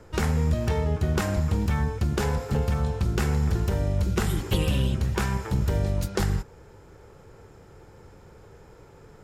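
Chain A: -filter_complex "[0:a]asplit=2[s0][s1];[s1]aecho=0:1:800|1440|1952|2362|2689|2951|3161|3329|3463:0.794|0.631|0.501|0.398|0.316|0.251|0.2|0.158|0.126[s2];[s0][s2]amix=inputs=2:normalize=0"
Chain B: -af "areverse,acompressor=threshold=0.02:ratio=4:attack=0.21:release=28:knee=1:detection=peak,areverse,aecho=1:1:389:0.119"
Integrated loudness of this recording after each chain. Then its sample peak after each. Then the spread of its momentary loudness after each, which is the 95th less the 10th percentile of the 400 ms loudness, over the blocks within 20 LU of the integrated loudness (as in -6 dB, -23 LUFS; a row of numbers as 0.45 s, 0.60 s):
-23.5 LUFS, -37.0 LUFS; -7.5 dBFS, -28.0 dBFS; 7 LU, 14 LU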